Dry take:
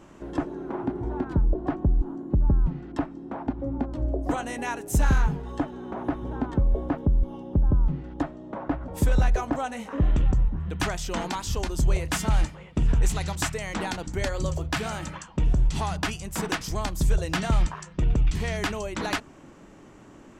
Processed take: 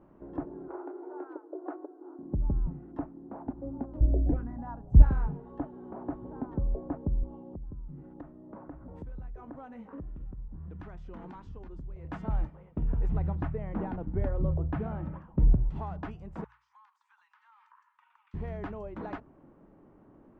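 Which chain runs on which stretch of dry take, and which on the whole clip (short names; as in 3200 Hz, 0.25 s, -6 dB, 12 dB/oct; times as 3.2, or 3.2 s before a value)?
0.68–2.19 brick-wall FIR high-pass 290 Hz + bell 1400 Hz +7.5 dB 0.3 oct
4–5.02 RIAA curve playback + envelope phaser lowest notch 280 Hz, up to 3900 Hz, full sweep at -6 dBFS
7.52–12.05 dynamic EQ 660 Hz, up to -7 dB, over -45 dBFS, Q 1.3 + compressor 10:1, threshold -30 dBFS
13.09–15.56 LPF 3100 Hz + low shelf 380 Hz +9 dB
16.44–18.34 steep high-pass 890 Hz 96 dB/oct + compressor 10:1, threshold -43 dBFS
whole clip: LPF 1000 Hz 12 dB/oct; notches 60/120 Hz; gain -7.5 dB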